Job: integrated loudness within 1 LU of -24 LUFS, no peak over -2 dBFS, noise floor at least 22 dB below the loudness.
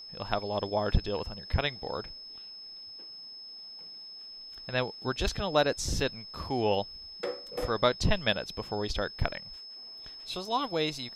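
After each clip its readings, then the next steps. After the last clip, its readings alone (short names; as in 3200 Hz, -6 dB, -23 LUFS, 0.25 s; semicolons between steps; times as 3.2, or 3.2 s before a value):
steady tone 5200 Hz; tone level -43 dBFS; loudness -31.5 LUFS; peak -10.5 dBFS; loudness target -24.0 LUFS
-> notch 5200 Hz, Q 30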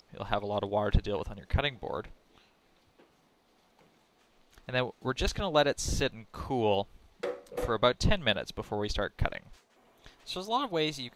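steady tone none; loudness -31.5 LUFS; peak -10.5 dBFS; loudness target -24.0 LUFS
-> gain +7.5 dB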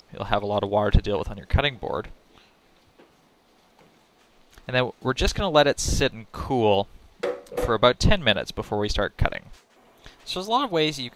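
loudness -24.0 LUFS; peak -3.0 dBFS; noise floor -60 dBFS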